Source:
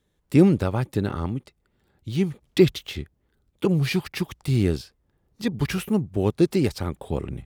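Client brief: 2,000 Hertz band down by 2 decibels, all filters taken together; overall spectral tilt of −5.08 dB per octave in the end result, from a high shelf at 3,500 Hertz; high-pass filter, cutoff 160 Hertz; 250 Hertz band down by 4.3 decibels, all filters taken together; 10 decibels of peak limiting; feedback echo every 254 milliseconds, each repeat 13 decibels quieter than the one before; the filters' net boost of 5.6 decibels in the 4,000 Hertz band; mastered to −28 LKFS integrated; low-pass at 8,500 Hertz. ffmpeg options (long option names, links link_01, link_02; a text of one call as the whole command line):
ffmpeg -i in.wav -af "highpass=160,lowpass=8500,equalizer=frequency=250:width_type=o:gain=-5,equalizer=frequency=2000:width_type=o:gain=-6.5,highshelf=frequency=3500:gain=6,equalizer=frequency=4000:width_type=o:gain=5,alimiter=limit=-17dB:level=0:latency=1,aecho=1:1:254|508|762:0.224|0.0493|0.0108,volume=2dB" out.wav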